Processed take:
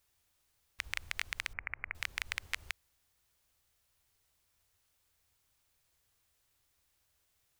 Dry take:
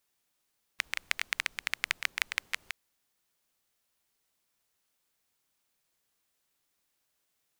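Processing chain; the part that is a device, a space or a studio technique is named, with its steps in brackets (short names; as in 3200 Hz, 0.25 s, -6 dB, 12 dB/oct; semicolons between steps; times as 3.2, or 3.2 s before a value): car stereo with a boomy subwoofer (resonant low shelf 130 Hz +12 dB, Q 1.5; limiter -15.5 dBFS, peak gain reduction 11 dB); 1.53–1.95 elliptic low-pass 2300 Hz, stop band 40 dB; gain +2 dB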